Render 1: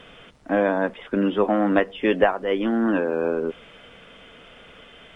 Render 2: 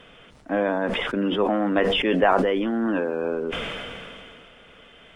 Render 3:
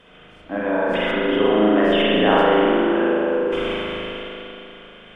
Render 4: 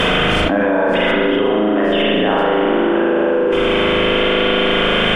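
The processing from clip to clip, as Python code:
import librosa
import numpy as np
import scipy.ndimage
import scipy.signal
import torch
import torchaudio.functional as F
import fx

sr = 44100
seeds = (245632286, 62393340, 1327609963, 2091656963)

y1 = fx.sustainer(x, sr, db_per_s=22.0)
y1 = y1 * librosa.db_to_amplitude(-3.0)
y2 = fx.rev_spring(y1, sr, rt60_s=2.9, pass_ms=(38,), chirp_ms=35, drr_db=-7.5)
y2 = y2 * librosa.db_to_amplitude(-3.5)
y3 = fx.env_flatten(y2, sr, amount_pct=100)
y3 = y3 * librosa.db_to_amplitude(-1.0)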